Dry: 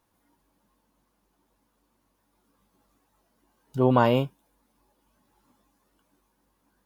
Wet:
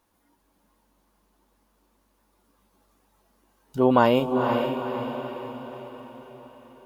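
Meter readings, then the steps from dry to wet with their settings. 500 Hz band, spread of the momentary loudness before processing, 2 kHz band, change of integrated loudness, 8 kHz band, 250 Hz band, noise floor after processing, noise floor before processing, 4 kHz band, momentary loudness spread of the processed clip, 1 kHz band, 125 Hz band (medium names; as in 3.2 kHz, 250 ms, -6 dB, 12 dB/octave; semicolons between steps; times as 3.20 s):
+4.0 dB, 15 LU, +4.0 dB, -0.5 dB, no reading, +3.5 dB, -69 dBFS, -73 dBFS, +4.0 dB, 22 LU, +4.0 dB, -4.0 dB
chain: peaking EQ 130 Hz -9 dB 0.46 oct; echo that smears into a reverb 483 ms, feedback 51%, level -5 dB; trim +2.5 dB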